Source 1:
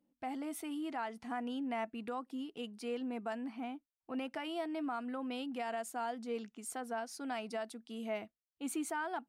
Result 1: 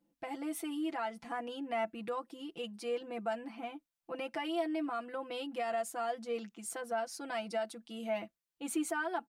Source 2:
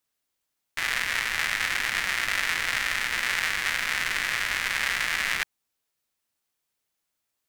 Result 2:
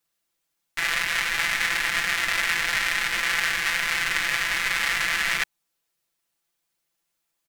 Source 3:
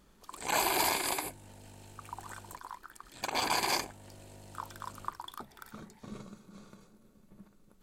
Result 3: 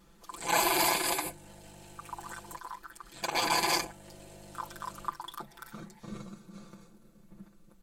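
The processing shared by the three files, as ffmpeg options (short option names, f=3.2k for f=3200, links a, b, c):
-af "aecho=1:1:5.9:0.9"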